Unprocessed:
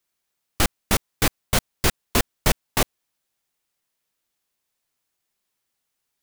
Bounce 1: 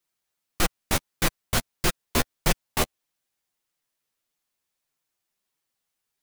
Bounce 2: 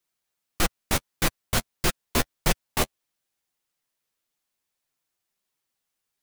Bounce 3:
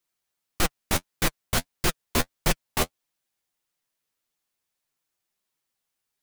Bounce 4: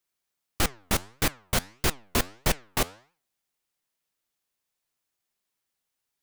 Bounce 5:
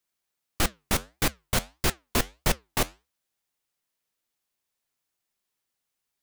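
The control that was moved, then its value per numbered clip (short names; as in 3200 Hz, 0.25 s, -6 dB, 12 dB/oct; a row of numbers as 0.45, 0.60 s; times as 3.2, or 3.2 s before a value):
flange, regen: +6, -14, +30, +89, -79%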